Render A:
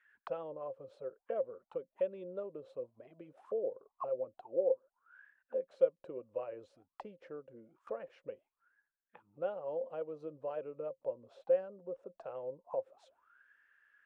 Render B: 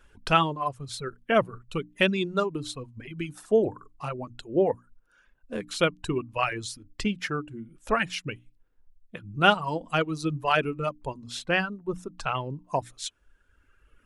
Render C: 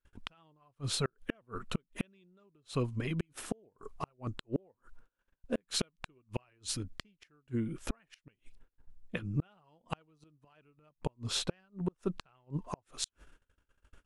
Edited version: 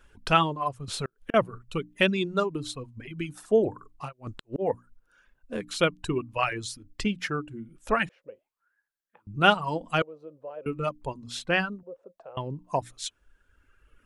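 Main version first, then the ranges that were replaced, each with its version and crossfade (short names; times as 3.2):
B
0.88–1.34 from C
4.08–4.63 from C, crossfade 0.10 s
8.09–9.27 from A
10.02–10.66 from A
11.83–12.37 from A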